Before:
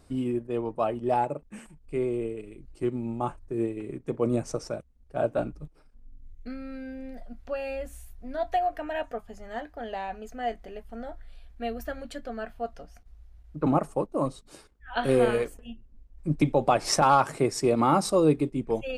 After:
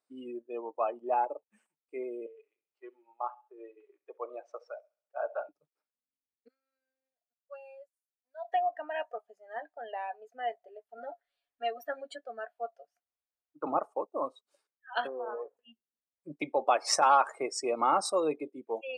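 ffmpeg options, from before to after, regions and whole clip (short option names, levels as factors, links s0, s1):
-filter_complex "[0:a]asettb=1/sr,asplit=3[s0][s1][s2];[s0]atrim=end=2.264[s3];[s1]atrim=start=2.26:end=5.49,asetpts=PTS-STARTPTS,afade=t=in:d=0.004:c=qsin,afade=t=out:st=3.226:d=0.004:c=qsin,highpass=640,lowpass=3400,aecho=1:1:67|134|201|268|335:0.158|0.0872|0.0479|0.0264|0.0145,atrim=end_sample=142443[s4];[s2]atrim=start=5.486[s5];[s3][s4]acrossfade=d=0.004:c1=hsin:c2=qsin[s6];[s6][s5]acrossfade=d=0.004:c1=qsin:c2=hsin,asettb=1/sr,asplit=3[s7][s8][s9];[s7]atrim=end=6.484[s10];[s8]atrim=start=6.48:end=8.45,asetpts=PTS-STARTPTS,afade=t=in:d=0.004:c=qsin,afade=t=out:st=1.966:d=0.004:c=qsin,agate=range=0.0224:threshold=0.0251:ratio=3:release=100:detection=peak,highpass=f=1400:p=1,equalizer=f=2300:t=o:w=1.1:g=-9.5[s11];[s9]atrim=start=8.446[s12];[s10][s11]acrossfade=d=0.004:c1=hsin:c2=qsin[s13];[s13][s12]acrossfade=d=0.004:c1=qsin:c2=hsin,asettb=1/sr,asplit=3[s14][s15][s16];[s14]atrim=end=10.974[s17];[s15]atrim=start=10.97:end=12.16,asetpts=PTS-STARTPTS,afade=t=in:d=0.004:c=qsin,afade=t=out:st=1.186:d=0.004:c=qsin,aecho=1:1:7.1:0.94,atrim=end_sample=52479,asubboost=boost=11:cutoff=65[s18];[s16]atrim=start=12.156[s19];[s17][s18]acrossfade=d=0.004:c1=hsin:c2=qsin[s20];[s20][s19]acrossfade=d=0.004:c1=qsin:c2=hsin,asettb=1/sr,asplit=3[s21][s22][s23];[s21]atrim=end=15.074[s24];[s22]atrim=start=15.07:end=15.57,asetpts=PTS-STARTPTS,afade=t=in:d=0.004:c=qsin,afade=t=out:st=0.496:d=0.004:c=qsin,acompressor=threshold=0.0398:ratio=12:attack=3.2:release=140:knee=1:detection=peak,lowpass=f=1000:t=q:w=2.2[s25];[s23]atrim=start=15.566[s26];[s24][s25]acrossfade=d=0.004:c1=hsin:c2=qsin[s27];[s27][s26]acrossfade=d=0.004:c1=qsin:c2=hsin,highpass=580,afftdn=nr=23:nf=-39,volume=0.841"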